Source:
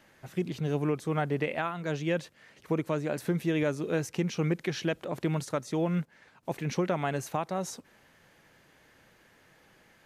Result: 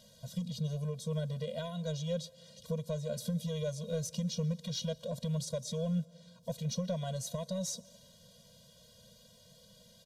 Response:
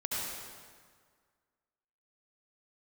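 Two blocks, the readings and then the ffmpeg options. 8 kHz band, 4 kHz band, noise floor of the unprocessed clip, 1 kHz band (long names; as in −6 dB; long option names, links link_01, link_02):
+2.0 dB, +1.0 dB, −62 dBFS, −15.0 dB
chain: -filter_complex "[0:a]firequalizer=gain_entry='entry(150,0);entry(1000,-19);entry(2100,-28);entry(3500,-1)':delay=0.05:min_phase=1,acompressor=threshold=-49dB:ratio=1.5,asplit=2[link_01][link_02];[link_02]highpass=frequency=720:poles=1,volume=12dB,asoftclip=type=tanh:threshold=-28dB[link_03];[link_01][link_03]amix=inputs=2:normalize=0,lowpass=frequency=5600:poles=1,volume=-6dB,asplit=2[link_04][link_05];[1:a]atrim=start_sample=2205,adelay=45[link_06];[link_05][link_06]afir=irnorm=-1:irlink=0,volume=-26.5dB[link_07];[link_04][link_07]amix=inputs=2:normalize=0,afftfilt=real='re*eq(mod(floor(b*sr/1024/230),2),0)':imag='im*eq(mod(floor(b*sr/1024/230),2),0)':win_size=1024:overlap=0.75,volume=8dB"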